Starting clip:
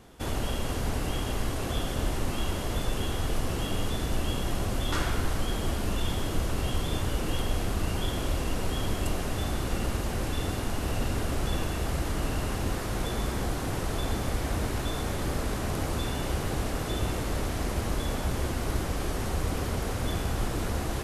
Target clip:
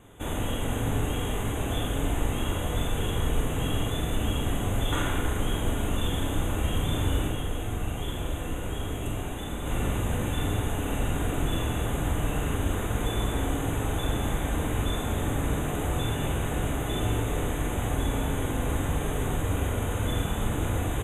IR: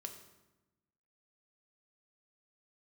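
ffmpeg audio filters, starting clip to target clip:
-filter_complex "[0:a]asplit=3[link_01][link_02][link_03];[link_01]afade=type=out:start_time=7.27:duration=0.02[link_04];[link_02]flanger=delay=0.3:depth=3.8:regen=-72:speed=1:shape=sinusoidal,afade=type=in:start_time=7.27:duration=0.02,afade=type=out:start_time=9.65:duration=0.02[link_05];[link_03]afade=type=in:start_time=9.65:duration=0.02[link_06];[link_04][link_05][link_06]amix=inputs=3:normalize=0,asuperstop=centerf=4900:order=20:qfactor=2.1,asplit=2[link_07][link_08];[link_08]adelay=45,volume=-5.5dB[link_09];[link_07][link_09]amix=inputs=2:normalize=0[link_10];[1:a]atrim=start_sample=2205,asetrate=32634,aresample=44100[link_11];[link_10][link_11]afir=irnorm=-1:irlink=0,volume=2.5dB"

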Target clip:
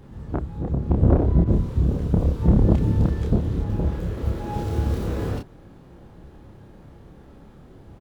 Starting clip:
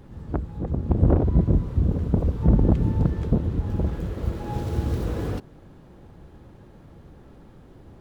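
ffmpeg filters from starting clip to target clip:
ffmpeg -i in.wav -filter_complex "[0:a]asplit=2[link_01][link_02];[link_02]adelay=29,volume=-3.5dB[link_03];[link_01][link_03]amix=inputs=2:normalize=0,asettb=1/sr,asplit=3[link_04][link_05][link_06];[link_04]atrim=end=1.444[link_07];[link_05]atrim=start=1.44:end=3.64,asetpts=PTS-STARTPTS,afade=type=in:duration=0.004:curve=qsin,afade=type=out:start_time=2.196:duration=0.004:curve=qsin,adynamicequalizer=threshold=0.00355:dfrequency=3000:dqfactor=0.7:tfrequency=3000:tqfactor=0.7:attack=5:release=100:ratio=0.375:range=2.5:mode=boostabove:tftype=highshelf[link_08];[link_06]atrim=start=3.636[link_09];[link_07][link_08]acrossfade=duration=0.004:curve1=hsin:curve2=qsin[link_10];[link_10][link_09]acrossfade=duration=0.004:curve1=qsin:curve2=hsin" out.wav

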